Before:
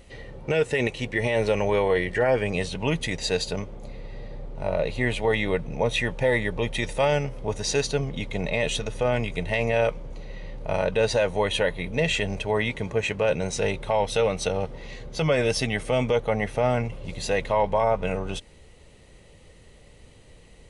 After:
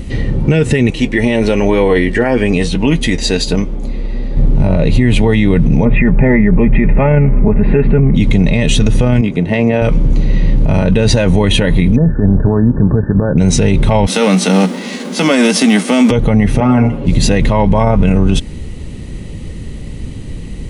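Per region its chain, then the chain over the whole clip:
0.90–4.37 s: peaking EQ 120 Hz -14.5 dB 1 oct + flange 1.1 Hz, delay 5.9 ms, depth 3.1 ms, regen +61%
5.85–8.15 s: elliptic low-pass 2.3 kHz, stop band 60 dB + hum notches 60/120 Hz + comb 4.9 ms, depth 49%
9.21–9.82 s: band-pass filter 310 Hz, Q 0.56 + tilt EQ +3 dB/octave
11.96–13.38 s: compression 10:1, threshold -26 dBFS + transient shaper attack -9 dB, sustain -4 dB + brick-wall FIR low-pass 1.8 kHz
14.06–16.10 s: formants flattened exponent 0.6 + rippled Chebyshev high-pass 180 Hz, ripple 3 dB
16.60–17.07 s: three-band isolator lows -16 dB, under 240 Hz, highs -13 dB, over 2 kHz + comb 7.2 ms, depth 75% + de-hum 45.65 Hz, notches 31
whole clip: resonant low shelf 380 Hz +11 dB, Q 1.5; loudness maximiser +17 dB; trim -1 dB

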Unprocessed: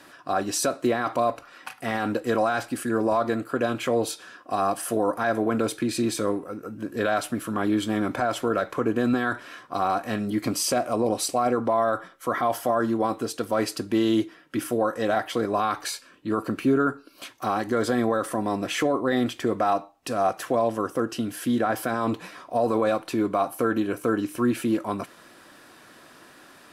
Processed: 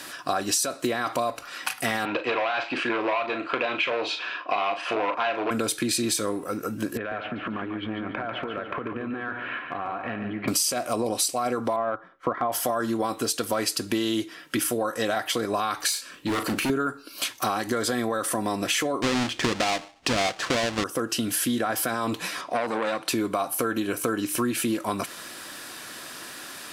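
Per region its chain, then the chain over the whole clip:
2.05–5.51 s: overload inside the chain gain 21.5 dB + cabinet simulation 210–3800 Hz, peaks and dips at 230 Hz -8 dB, 650 Hz +4 dB, 990 Hz +7 dB, 2.5 kHz +10 dB + doubling 39 ms -9 dB
6.97–10.48 s: steep low-pass 2.7 kHz + compression 12:1, threshold -34 dBFS + feedback delay 144 ms, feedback 37%, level -7 dB
11.76–12.52 s: low-pass 1.4 kHz + transient shaper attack +3 dB, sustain -9 dB
15.92–16.70 s: hard clipper -27.5 dBFS + doubling 40 ms -9.5 dB
19.02–20.84 s: square wave that keeps the level + distance through air 100 m
22.41–23.08 s: high-pass 120 Hz 24 dB/octave + distance through air 61 m + transformer saturation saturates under 950 Hz
whole clip: treble shelf 2.1 kHz +12 dB; compression 6:1, threshold -28 dBFS; trim +5 dB

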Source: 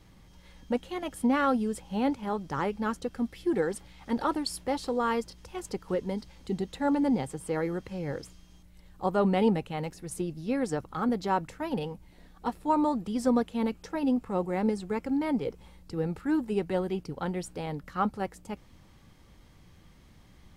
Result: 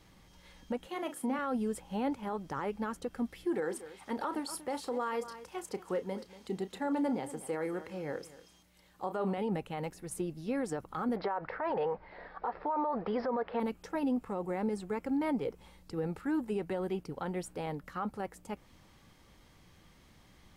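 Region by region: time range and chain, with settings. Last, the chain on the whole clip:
0.87–1.39 s: high-pass 140 Hz 24 dB/octave + hum notches 60/120/180/240/300/360/420/480/540 Hz + doubling 38 ms -10.5 dB
3.45–9.38 s: high-pass 220 Hz 6 dB/octave + doubling 32 ms -13 dB + delay 236 ms -17.5 dB
11.16–13.60 s: steep low-pass 5.2 kHz 96 dB/octave + high-order bell 940 Hz +15 dB 2.7 oct + compression 2:1, threshold -22 dBFS
whole clip: bass shelf 250 Hz -7 dB; peak limiter -25 dBFS; dynamic bell 4.7 kHz, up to -6 dB, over -57 dBFS, Q 0.73

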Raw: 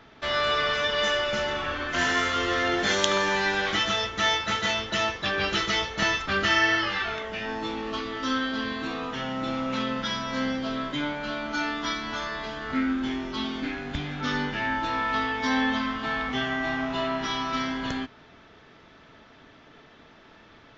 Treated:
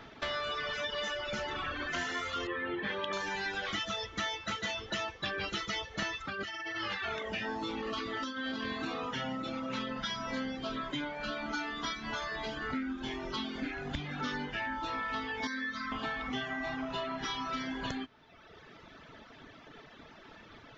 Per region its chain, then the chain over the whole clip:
2.47–3.13 s: low-pass 3.1 kHz 24 dB/octave + comb of notches 710 Hz
6.25–9.75 s: high-pass 47 Hz + compressor with a negative ratio -31 dBFS
15.47–15.92 s: bass shelf 270 Hz -10 dB + static phaser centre 2.9 kHz, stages 6
whole clip: reverb removal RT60 1.1 s; compression 5:1, threshold -36 dBFS; trim +2 dB

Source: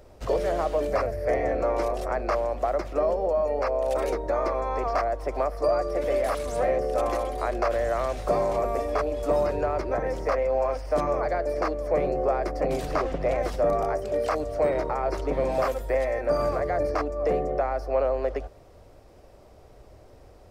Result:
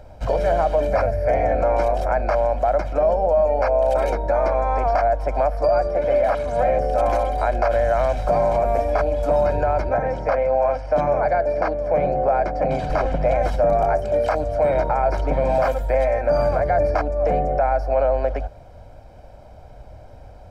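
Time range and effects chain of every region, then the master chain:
5.87–6.59 s: high-pass 73 Hz 6 dB/octave + treble shelf 5.3 kHz -12 dB
9.89–12.90 s: high-pass 68 Hz + distance through air 73 m
whole clip: treble shelf 3.8 kHz -10.5 dB; comb 1.3 ms, depth 66%; loudness maximiser +15 dB; trim -9 dB

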